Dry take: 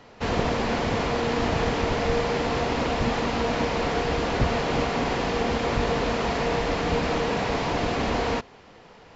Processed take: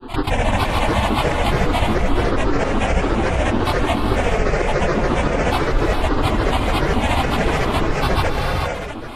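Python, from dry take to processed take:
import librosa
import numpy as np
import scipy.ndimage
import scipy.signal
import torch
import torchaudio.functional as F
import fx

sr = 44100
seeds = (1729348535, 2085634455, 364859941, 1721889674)

y = fx.low_shelf(x, sr, hz=250.0, db=7.0)
y = fx.fixed_phaser(y, sr, hz=920.0, stages=6)
y = y + 0.85 * np.pad(y, (int(5.1 * sr / 1000.0), 0))[:len(y)]
y = fx.granulator(y, sr, seeds[0], grain_ms=100.0, per_s=14.0, spray_ms=100.0, spread_st=12)
y = fx.volume_shaper(y, sr, bpm=91, per_beat=1, depth_db=-20, release_ms=171.0, shape='fast start')
y = fx.rev_gated(y, sr, seeds[1], gate_ms=470, shape='rising', drr_db=3.5)
y = fx.env_flatten(y, sr, amount_pct=50)
y = y * librosa.db_to_amplitude(3.5)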